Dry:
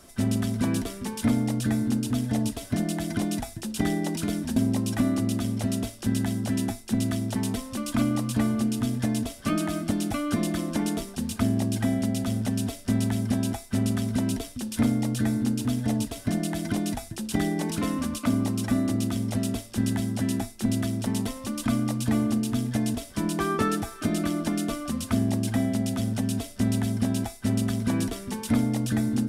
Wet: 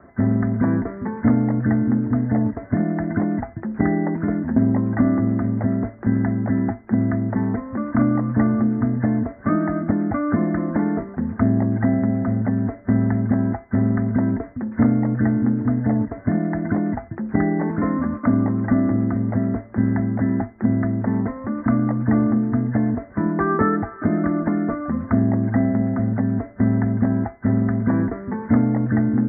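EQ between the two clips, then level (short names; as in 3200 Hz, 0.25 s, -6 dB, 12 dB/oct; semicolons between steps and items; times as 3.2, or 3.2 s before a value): HPF 60 Hz; steep low-pass 2000 Hz 96 dB/oct; +6.5 dB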